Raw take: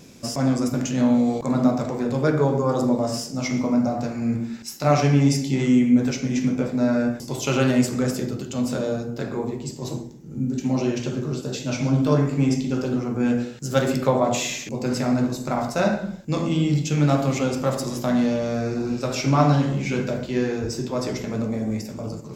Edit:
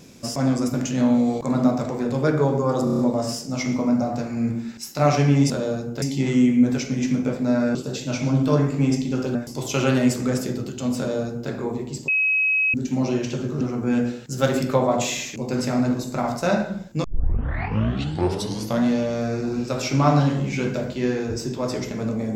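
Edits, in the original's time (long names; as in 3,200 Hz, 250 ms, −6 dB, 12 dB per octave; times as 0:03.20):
0:02.84: stutter 0.03 s, 6 plays
0:08.71–0:09.23: duplicate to 0:05.35
0:09.81–0:10.47: beep over 2,550 Hz −17 dBFS
0:11.34–0:12.94: move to 0:07.08
0:16.37: tape start 1.81 s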